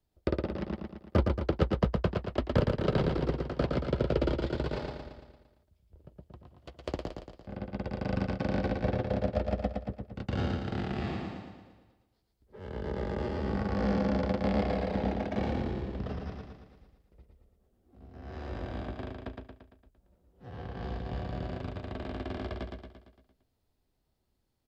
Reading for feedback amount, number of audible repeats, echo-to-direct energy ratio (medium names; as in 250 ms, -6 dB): 54%, 6, -2.5 dB